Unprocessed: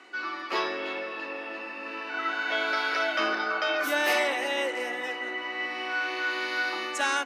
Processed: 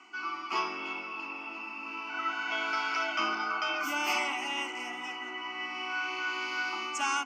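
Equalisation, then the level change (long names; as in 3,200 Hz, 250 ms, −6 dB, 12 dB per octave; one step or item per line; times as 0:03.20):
phaser with its sweep stopped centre 2,600 Hz, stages 8
0.0 dB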